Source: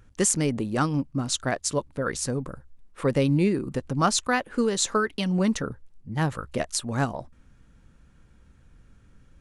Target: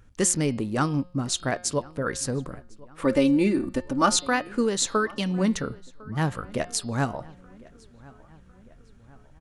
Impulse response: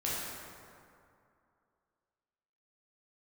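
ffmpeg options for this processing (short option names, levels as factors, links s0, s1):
-filter_complex "[0:a]bandreject=f=178.7:t=h:w=4,bandreject=f=357.4:t=h:w=4,bandreject=f=536.1:t=h:w=4,bandreject=f=714.8:t=h:w=4,bandreject=f=893.5:t=h:w=4,bandreject=f=1072.2:t=h:w=4,bandreject=f=1250.9:t=h:w=4,bandreject=f=1429.6:t=h:w=4,bandreject=f=1608.3:t=h:w=4,bandreject=f=1787:t=h:w=4,bandreject=f=1965.7:t=h:w=4,bandreject=f=2144.4:t=h:w=4,bandreject=f=2323.1:t=h:w=4,bandreject=f=2501.8:t=h:w=4,bandreject=f=2680.5:t=h:w=4,bandreject=f=2859.2:t=h:w=4,bandreject=f=3037.9:t=h:w=4,bandreject=f=3216.6:t=h:w=4,bandreject=f=3395.3:t=h:w=4,bandreject=f=3574:t=h:w=4,bandreject=f=3752.7:t=h:w=4,bandreject=f=3931.4:t=h:w=4,bandreject=f=4110.1:t=h:w=4,bandreject=f=4288.8:t=h:w=4,bandreject=f=4467.5:t=h:w=4,bandreject=f=4646.2:t=h:w=4,bandreject=f=4824.9:t=h:w=4,bandreject=f=5003.6:t=h:w=4,bandreject=f=5182.3:t=h:w=4,asettb=1/sr,asplit=3[s0][s1][s2];[s0]atrim=end=3.034[s3];[s1]atrim=start=3.03:end=4.19,asetpts=PTS-STARTPTS,afade=t=in:d=0.004:c=qsin,afade=t=out:st=1.156:d=0.004:c=qsin,aecho=1:1:3.4:0.76,atrim=end_sample=51156[s4];[s2]atrim=start=4.186[s5];[s3][s4]acrossfade=d=0.004:c1=hsin:c2=qsin[s6];[s6][s5]acrossfade=d=0.004:c1=qsin:c2=hsin,asplit=2[s7][s8];[s8]adelay=1053,lowpass=f=3100:p=1,volume=0.0708,asplit=2[s9][s10];[s10]adelay=1053,lowpass=f=3100:p=1,volume=0.54,asplit=2[s11][s12];[s12]adelay=1053,lowpass=f=3100:p=1,volume=0.54,asplit=2[s13][s14];[s14]adelay=1053,lowpass=f=3100:p=1,volume=0.54[s15];[s7][s9][s11][s13][s15]amix=inputs=5:normalize=0"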